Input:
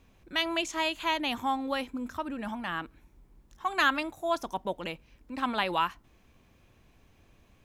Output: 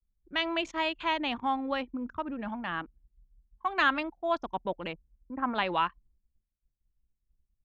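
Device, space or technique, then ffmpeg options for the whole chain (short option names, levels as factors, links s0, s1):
hearing-loss simulation: -filter_complex "[0:a]asplit=3[s0][s1][s2];[s0]afade=t=out:st=4.93:d=0.02[s3];[s1]lowpass=f=1800:w=0.5412,lowpass=f=1800:w=1.3066,afade=t=in:st=4.93:d=0.02,afade=t=out:st=5.54:d=0.02[s4];[s2]afade=t=in:st=5.54:d=0.02[s5];[s3][s4][s5]amix=inputs=3:normalize=0,anlmdn=0.398,lowpass=3500,agate=range=0.0224:threshold=0.00112:ratio=3:detection=peak"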